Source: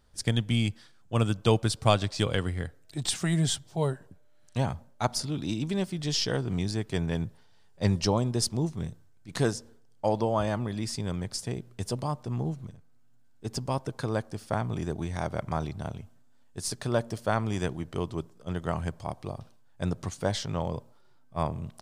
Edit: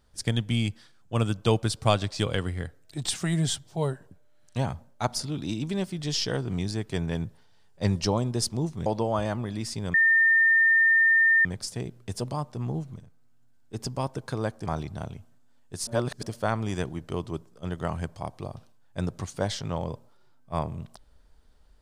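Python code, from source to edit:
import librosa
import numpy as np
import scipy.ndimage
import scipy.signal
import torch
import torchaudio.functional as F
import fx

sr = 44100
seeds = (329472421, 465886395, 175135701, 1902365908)

y = fx.edit(x, sr, fx.cut(start_s=8.86, length_s=1.22),
    fx.insert_tone(at_s=11.16, length_s=1.51, hz=1810.0, db=-16.5),
    fx.cut(start_s=14.37, length_s=1.13),
    fx.reverse_span(start_s=16.71, length_s=0.36), tone=tone)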